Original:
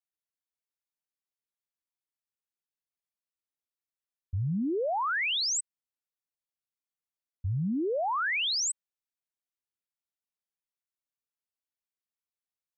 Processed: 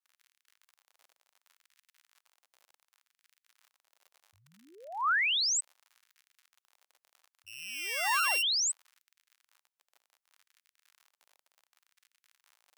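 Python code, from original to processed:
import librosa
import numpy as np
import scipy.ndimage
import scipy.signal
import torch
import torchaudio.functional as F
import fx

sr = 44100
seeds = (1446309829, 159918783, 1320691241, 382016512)

y = fx.sample_sort(x, sr, block=16, at=(7.46, 8.41), fade=0.02)
y = fx.dmg_crackle(y, sr, seeds[0], per_s=66.0, level_db=-46.0)
y = fx.filter_lfo_highpass(y, sr, shape='sine', hz=0.68, low_hz=620.0, high_hz=1800.0, q=1.3)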